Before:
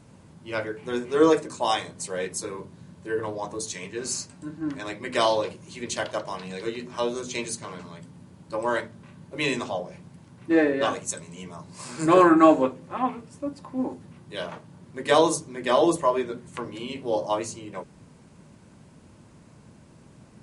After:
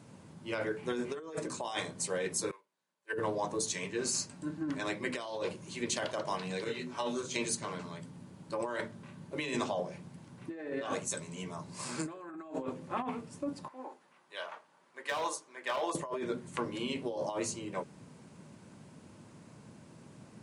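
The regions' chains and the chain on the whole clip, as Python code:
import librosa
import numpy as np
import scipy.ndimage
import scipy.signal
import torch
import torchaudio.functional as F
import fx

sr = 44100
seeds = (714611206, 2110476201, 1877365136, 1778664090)

y = fx.chain(x, sr, fx.highpass(hz=730.0, slope=12),
    fx.dynamic_eq(hz=2300.0, q=1.5, threshold_db=-59.0, ratio=4.0, max_db=5),
    fx.upward_expand(threshold_db=-47.0, expansion=2.5), at=(2.51, 3.13))
y = fx.chain(y, sr, fx.comb(ms=7.2, depth=0.62),
    fx.detune_double(cents=28), at=(6.64, 7.36))
y = fx.chain(y, sr, fx.highpass(hz=930.0, slope=12),
    fx.high_shelf(hz=2600.0, db=-10.5),
    fx.overload_stage(gain_db=24.5), at=(13.68, 15.95))
y = scipy.signal.sosfilt(scipy.signal.butter(2, 110.0, 'highpass', fs=sr, output='sos'), y)
y = fx.over_compress(y, sr, threshold_db=-30.0, ratio=-1.0)
y = y * 10.0 ** (-6.0 / 20.0)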